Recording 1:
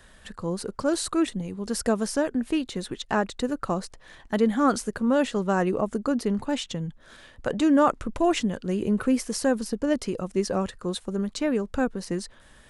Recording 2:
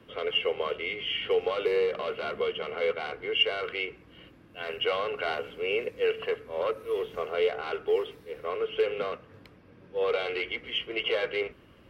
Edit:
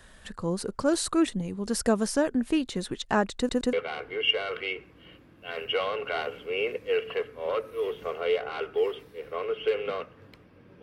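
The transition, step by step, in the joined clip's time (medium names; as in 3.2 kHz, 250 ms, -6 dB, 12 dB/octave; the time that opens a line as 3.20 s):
recording 1
3.37 s: stutter in place 0.12 s, 3 plays
3.73 s: go over to recording 2 from 2.85 s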